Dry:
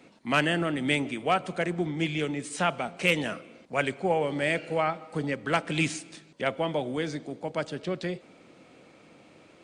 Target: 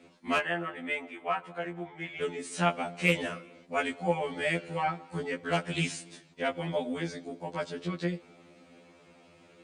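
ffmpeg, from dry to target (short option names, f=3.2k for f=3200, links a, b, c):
-filter_complex "[0:a]asettb=1/sr,asplit=3[a][b][c];[a]atrim=end=0.384[d];[b]atrim=start=0.38:end=2.22,asetpts=PTS-STARTPTS,afade=t=in:d=0.004:c=qsin,afade=t=out:st=1.836:d=0.004:c=qsin,acrossover=split=550 2400:gain=0.2 1 0.158[e][f][g];[e][f][g]amix=inputs=3:normalize=0[h];[c]atrim=start=2.216[i];[d][h]acrossfade=d=0.004:c1=hsin:c2=qsin[j];[j][i]acrossfade=d=0.004:c1=qsin:c2=hsin,afftfilt=real='re*2*eq(mod(b,4),0)':imag='im*2*eq(mod(b,4),0)':win_size=2048:overlap=0.75"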